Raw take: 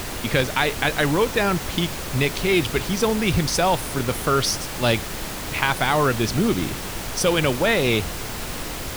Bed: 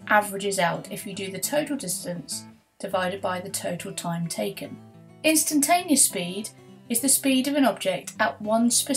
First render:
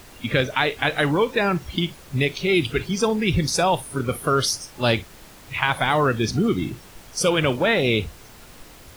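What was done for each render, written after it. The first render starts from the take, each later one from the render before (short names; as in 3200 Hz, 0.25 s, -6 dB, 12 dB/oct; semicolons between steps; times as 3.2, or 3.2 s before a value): noise print and reduce 15 dB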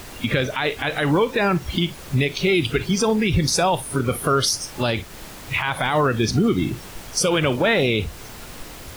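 in parallel at +2.5 dB: compressor, threshold -28 dBFS, peak gain reduction 13 dB; on the sum: limiter -10 dBFS, peak gain reduction 10.5 dB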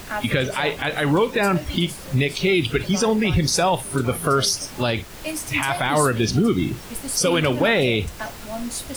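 add bed -9 dB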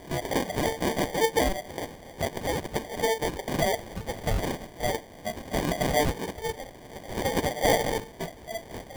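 rippled Chebyshev high-pass 440 Hz, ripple 9 dB; sample-and-hold 33×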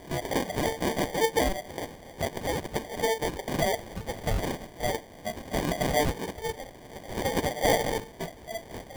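gain -1 dB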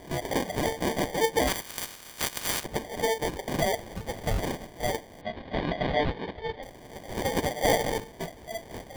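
1.47–2.63 spectral limiter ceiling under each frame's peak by 28 dB; 5.21–6.63 elliptic low-pass 4100 Hz, stop band 80 dB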